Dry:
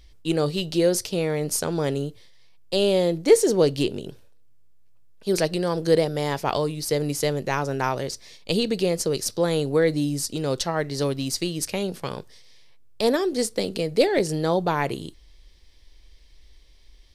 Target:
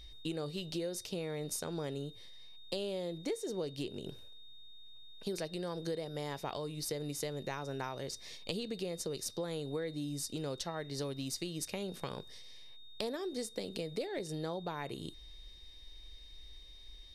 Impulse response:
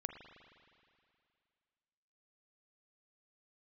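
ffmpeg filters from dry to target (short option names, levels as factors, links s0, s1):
-af "acompressor=threshold=0.02:ratio=6,aeval=exprs='val(0)+0.00251*sin(2*PI*3700*n/s)':c=same,volume=0.75"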